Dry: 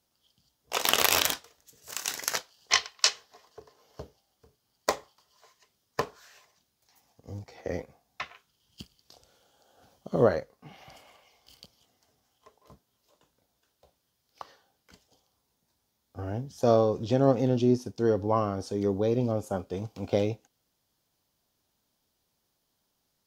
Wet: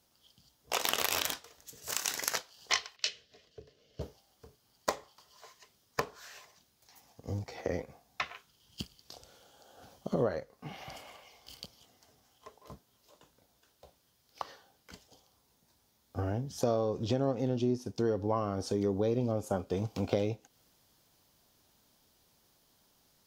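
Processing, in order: in parallel at +2.5 dB: vocal rider 2 s; 2.96–4.01 on the sum: EQ curve 150 Hz 0 dB, 350 Hz -7 dB, 610 Hz -8 dB, 890 Hz -28 dB, 1500 Hz -13 dB, 2900 Hz -3 dB, 11000 Hz -18 dB; compressor 3:1, threshold -31 dBFS, peak gain reduction 16 dB

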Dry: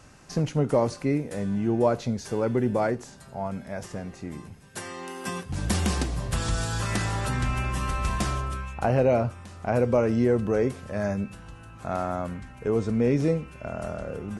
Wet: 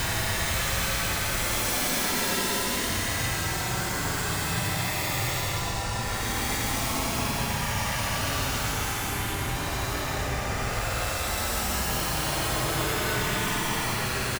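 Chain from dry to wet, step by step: feedback echo 0.559 s, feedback 37%, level -9.5 dB; wrapped overs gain 21.5 dB; Paulstretch 31×, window 0.05 s, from 6.9

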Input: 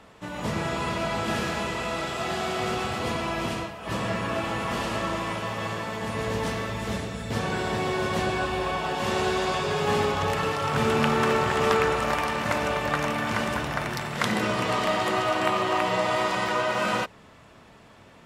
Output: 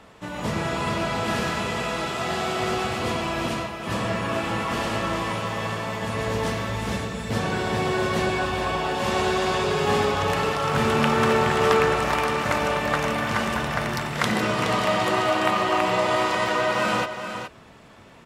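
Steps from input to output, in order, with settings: echo 0.42 s -8.5 dB; gain +2 dB

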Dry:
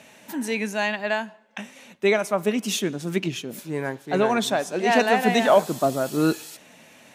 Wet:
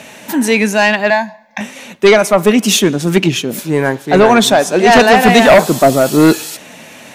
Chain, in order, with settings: 1.1–1.61 fixed phaser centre 2000 Hz, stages 8; sine folder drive 8 dB, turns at -4.5 dBFS; gain +3 dB

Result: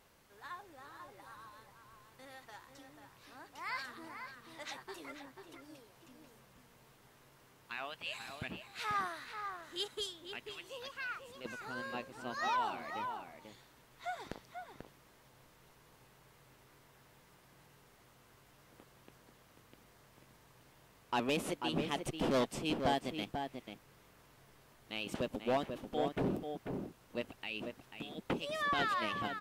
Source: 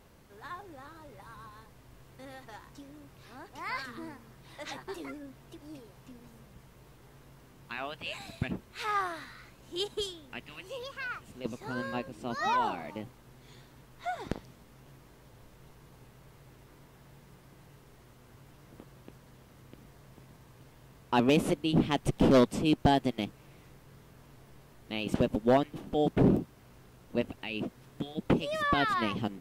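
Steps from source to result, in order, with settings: low shelf 470 Hz -11 dB; soft clip -21 dBFS, distortion -19 dB; outdoor echo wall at 84 m, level -6 dB; gain -2.5 dB

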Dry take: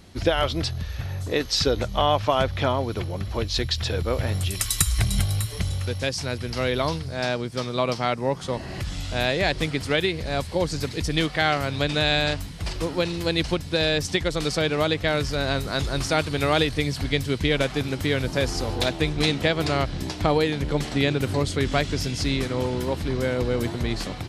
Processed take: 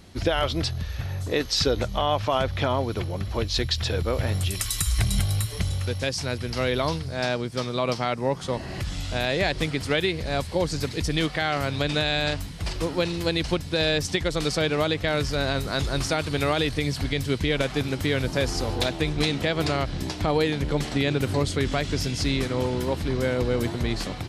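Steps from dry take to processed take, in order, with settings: limiter -12 dBFS, peak gain reduction 6.5 dB

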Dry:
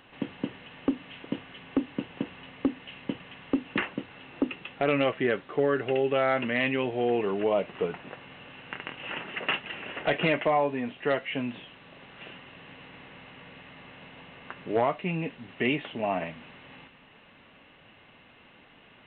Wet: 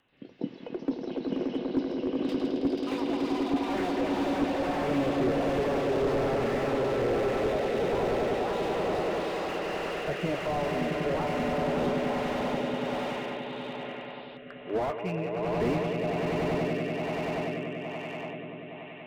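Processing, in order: spectral noise reduction 12 dB; on a send: swelling echo 96 ms, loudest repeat 8, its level -7 dB; on the sum: rotary speaker horn 1.2 Hz; echoes that change speed 85 ms, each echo +5 st, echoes 2, each echo -6 dB; slew limiter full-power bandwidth 31 Hz

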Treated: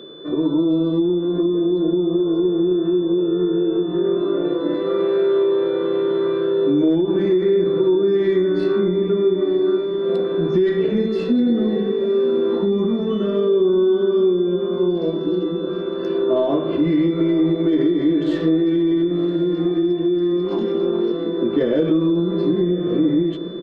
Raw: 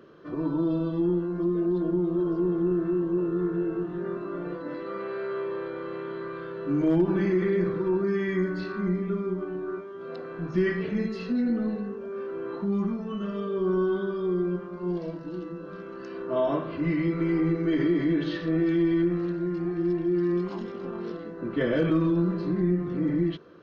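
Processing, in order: tracing distortion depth 0.042 ms; bell 400 Hz +13.5 dB 2 oct; on a send: diffused feedback echo 1.071 s, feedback 45%, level -15 dB; on the sum: compressor, threshold -18 dBFS, peak gain reduction 11.5 dB; doubler 13 ms -13 dB; AGC gain up to 3 dB; whine 3500 Hz -41 dBFS

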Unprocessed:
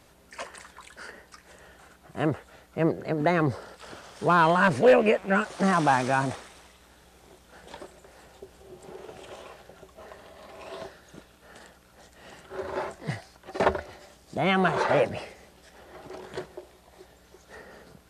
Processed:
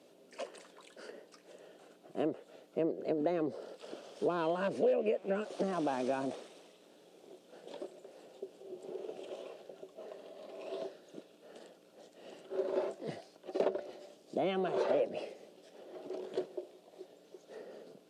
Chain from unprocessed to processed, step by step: band shelf 1300 Hz -11 dB; compressor 8:1, threshold -28 dBFS, peak gain reduction 14.5 dB; Bessel high-pass 420 Hz, order 4; tilt -3.5 dB/oct

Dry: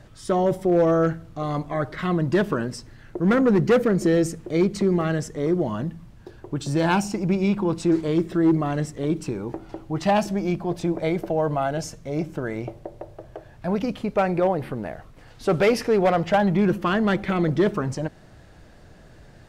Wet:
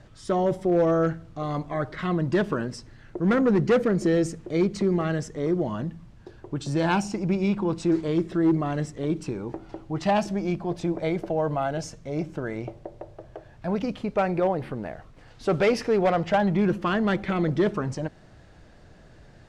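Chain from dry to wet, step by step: LPF 8200 Hz 12 dB/oct; gain -2.5 dB

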